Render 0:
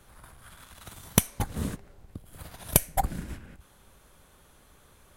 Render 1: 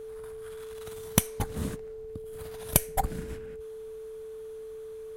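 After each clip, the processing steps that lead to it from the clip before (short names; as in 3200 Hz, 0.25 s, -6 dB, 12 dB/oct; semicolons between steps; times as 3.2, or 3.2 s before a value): whine 440 Hz -37 dBFS; gain -1.5 dB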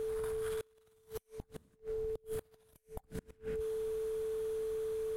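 compressor 16:1, threshold -36 dBFS, peak gain reduction 22 dB; flipped gate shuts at -33 dBFS, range -31 dB; gain +4.5 dB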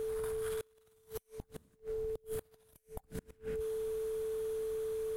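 high shelf 8600 Hz +5 dB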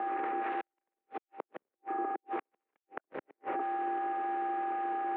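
added harmonics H 3 -11 dB, 4 -16 dB, 6 -10 dB, 7 -34 dB, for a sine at -25 dBFS; mistuned SSB -93 Hz 430–2600 Hz; gain +9 dB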